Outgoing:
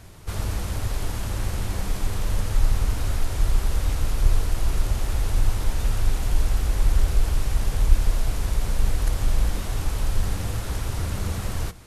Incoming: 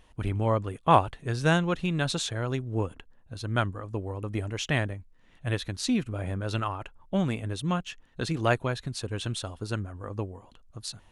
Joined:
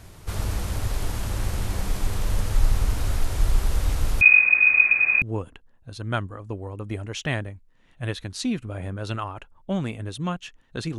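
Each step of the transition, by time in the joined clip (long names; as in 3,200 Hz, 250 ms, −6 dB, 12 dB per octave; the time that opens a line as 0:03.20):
outgoing
0:04.21–0:05.22: voice inversion scrambler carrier 2,500 Hz
0:05.22: continue with incoming from 0:02.66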